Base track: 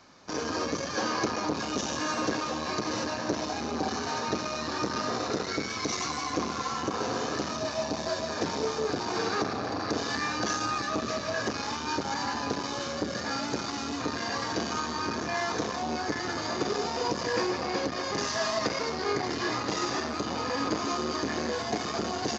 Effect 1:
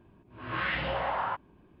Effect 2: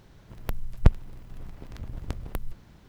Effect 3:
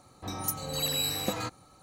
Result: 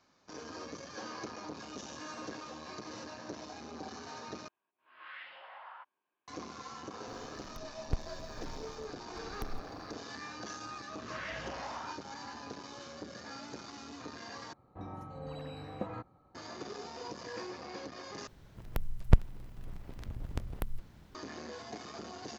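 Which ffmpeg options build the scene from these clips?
-filter_complex "[1:a]asplit=2[s0][s1];[2:a]asplit=2[s2][s3];[0:a]volume=0.2[s4];[s0]highpass=910[s5];[s2]tremolo=f=0.76:d=0.93[s6];[3:a]lowpass=1300[s7];[s4]asplit=4[s8][s9][s10][s11];[s8]atrim=end=4.484[s12];[s5]atrim=end=1.8,asetpts=PTS-STARTPTS,volume=0.158[s13];[s9]atrim=start=6.276:end=14.534[s14];[s7]atrim=end=1.82,asetpts=PTS-STARTPTS,volume=0.501[s15];[s10]atrim=start=16.346:end=18.274[s16];[s3]atrim=end=2.88,asetpts=PTS-STARTPTS,volume=0.668[s17];[s11]atrim=start=21.146[s18];[s6]atrim=end=2.88,asetpts=PTS-STARTPTS,volume=0.562,afade=t=in:d=0.004:c=hsin,afade=t=out:st=2.876:d=0.004:c=hsin,adelay=7070[s19];[s1]atrim=end=1.8,asetpts=PTS-STARTPTS,volume=0.266,afade=t=in:d=0.004:c=hsin,afade=t=out:st=1.796:d=0.004:c=hsin,adelay=10570[s20];[s12][s13]acrossfade=d=0.004:c1=hsin:c2=hsin[s21];[s21][s14]acrossfade=d=0.004:c1=hsin:c2=hsin[s22];[s22][s15]acrossfade=d=0.004:c1=hsin:c2=hsin[s23];[s23][s16]acrossfade=d=0.004:c1=hsin:c2=hsin[s24];[s24][s17]acrossfade=d=0.004:c1=hsin:c2=hsin[s25];[s25][s18]acrossfade=d=0.004:c1=hsin:c2=hsin[s26];[s26][s19][s20]amix=inputs=3:normalize=0"

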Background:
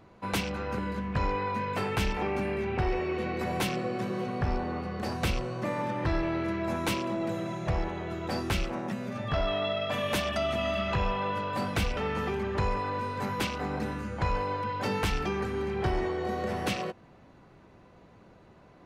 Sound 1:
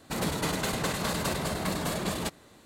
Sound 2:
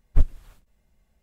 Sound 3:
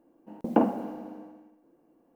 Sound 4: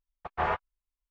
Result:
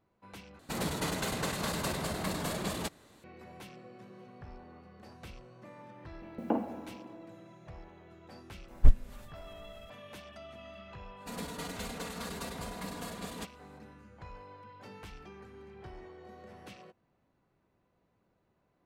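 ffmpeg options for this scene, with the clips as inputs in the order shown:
-filter_complex "[1:a]asplit=2[s0][s1];[0:a]volume=0.106[s2];[2:a]acompressor=mode=upward:threshold=0.0126:ratio=2.5:attack=3.2:release=140:knee=2.83:detection=peak[s3];[s1]aecho=1:1:4.2:0.65[s4];[s2]asplit=2[s5][s6];[s5]atrim=end=0.594[s7];[s0]atrim=end=2.65,asetpts=PTS-STARTPTS,volume=0.631[s8];[s6]atrim=start=3.236[s9];[3:a]atrim=end=2.15,asetpts=PTS-STARTPTS,volume=0.376,afade=t=in:d=0.004:c=hsin,afade=t=out:st=2.146:d=0.004:c=hsin,adelay=5940[s10];[s3]atrim=end=1.22,asetpts=PTS-STARTPTS,volume=0.794,afade=t=in:d=0.004:c=hsin,afade=t=out:st=1.216:d=0.004:c=hsin,adelay=8680[s11];[s4]atrim=end=2.65,asetpts=PTS-STARTPTS,volume=0.251,afade=t=in:d=0.05,afade=t=out:st=2.6:d=0.05,adelay=11160[s12];[s7][s8]acrossfade=d=0.004:c1=hsin:c2=hsin[s13];[s13][s9]acrossfade=d=0.004:c1=hsin:c2=hsin[s14];[s14][s10][s11][s12]amix=inputs=4:normalize=0"

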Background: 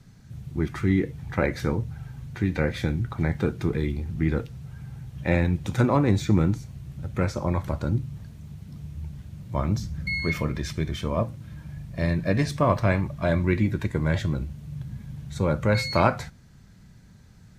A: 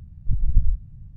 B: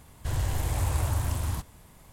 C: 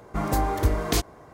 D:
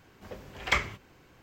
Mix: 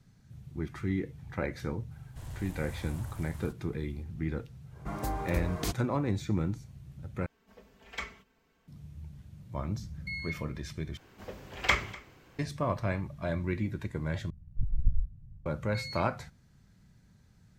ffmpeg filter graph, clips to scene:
-filter_complex "[4:a]asplit=2[s0][s1];[0:a]volume=0.335[s2];[s0]aecho=1:1:4.5:0.77[s3];[s1]aecho=1:1:246:0.0891[s4];[s2]asplit=4[s5][s6][s7][s8];[s5]atrim=end=7.264[s9];[s3]atrim=end=1.42,asetpts=PTS-STARTPTS,volume=0.2[s10];[s6]atrim=start=8.676:end=10.974[s11];[s4]atrim=end=1.42[s12];[s7]atrim=start=12.386:end=14.304[s13];[1:a]atrim=end=1.16,asetpts=PTS-STARTPTS,volume=0.376[s14];[s8]atrim=start=15.456[s15];[2:a]atrim=end=2.12,asetpts=PTS-STARTPTS,volume=0.178,afade=t=in:d=0.004:c=hsin,afade=t=out:st=2.116:d=0.004:c=hsin,adelay=1910[s16];[3:a]atrim=end=1.33,asetpts=PTS-STARTPTS,volume=0.316,afade=t=in:d=0.05,afade=t=out:st=1.28:d=0.05,adelay=4710[s17];[s9][s10]acrossfade=d=0.004:c1=hsin:c2=hsin[s18];[s18][s11]acrossfade=d=0.004:c1=hsin:c2=hsin[s19];[s19][s12]acrossfade=d=0.004:c1=hsin:c2=hsin[s20];[s20][s13]acrossfade=d=0.004:c1=hsin:c2=hsin[s21];[s21][s14]acrossfade=d=0.004:c1=hsin:c2=hsin[s22];[s22][s15]acrossfade=d=0.004:c1=hsin:c2=hsin[s23];[s23][s16][s17]amix=inputs=3:normalize=0"

